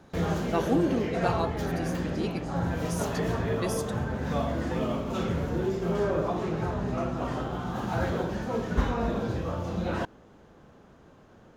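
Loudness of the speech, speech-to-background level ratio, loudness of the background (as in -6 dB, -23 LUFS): -33.5 LUFS, -3.5 dB, -30.0 LUFS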